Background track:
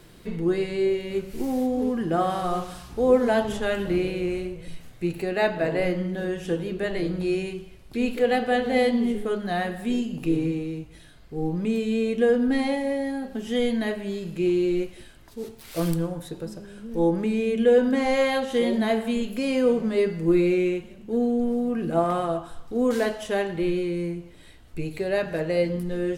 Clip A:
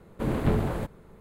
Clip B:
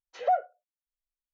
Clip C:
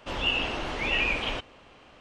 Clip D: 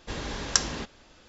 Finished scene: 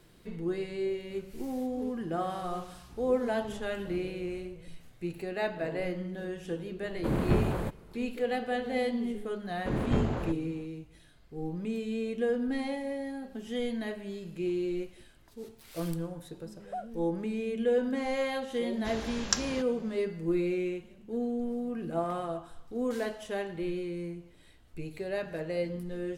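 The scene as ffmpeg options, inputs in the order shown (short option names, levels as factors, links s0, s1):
-filter_complex "[1:a]asplit=2[s0][s1];[0:a]volume=0.355[s2];[s1]aresample=16000,aresample=44100[s3];[2:a]lowpass=1800[s4];[s0]atrim=end=1.2,asetpts=PTS-STARTPTS,volume=0.794,afade=t=in:d=0.004:c=hsin,afade=t=out:st=1.196:d=0.004:c=hsin,adelay=6840[s5];[s3]atrim=end=1.2,asetpts=PTS-STARTPTS,volume=0.668,afade=t=in:d=0.004:c=hsin,afade=t=out:st=1.196:d=0.004:c=hsin,adelay=417186S[s6];[s4]atrim=end=1.33,asetpts=PTS-STARTPTS,volume=0.211,afade=t=in:d=0.004:c=hsin,afade=t=out:st=1.326:d=0.004:c=hsin,adelay=16450[s7];[4:a]atrim=end=1.28,asetpts=PTS-STARTPTS,volume=0.562,afade=t=in:d=0.004:c=hsin,afade=t=out:st=1.276:d=0.004:c=hsin,adelay=18770[s8];[s2][s5][s6][s7][s8]amix=inputs=5:normalize=0"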